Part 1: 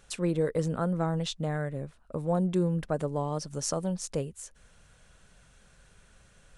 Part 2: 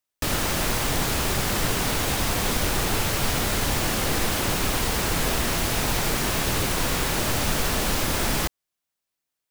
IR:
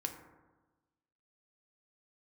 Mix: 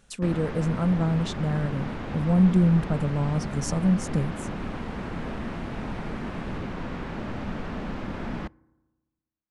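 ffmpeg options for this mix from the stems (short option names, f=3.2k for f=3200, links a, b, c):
-filter_complex "[0:a]asubboost=boost=4.5:cutoff=180,volume=-2dB[a];[1:a]lowpass=1.9k,volume=-10dB,asplit=2[b][c];[c]volume=-19.5dB[d];[2:a]atrim=start_sample=2205[e];[d][e]afir=irnorm=-1:irlink=0[f];[a][b][f]amix=inputs=3:normalize=0,equalizer=f=210:w=1.7:g=9.5"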